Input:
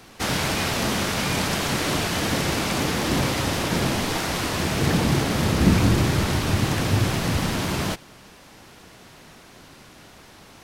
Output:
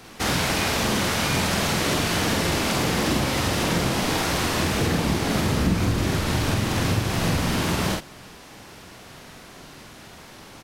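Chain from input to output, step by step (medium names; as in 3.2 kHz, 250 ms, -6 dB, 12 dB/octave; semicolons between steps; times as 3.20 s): compression, threshold -22 dBFS, peak gain reduction 10.5 dB; doubling 47 ms -2.5 dB; trim +1.5 dB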